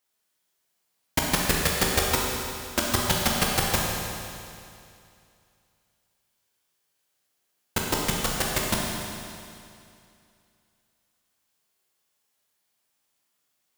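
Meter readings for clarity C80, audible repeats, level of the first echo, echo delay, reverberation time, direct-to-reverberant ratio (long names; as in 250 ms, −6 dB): 1.0 dB, no echo audible, no echo audible, no echo audible, 2.5 s, −2.5 dB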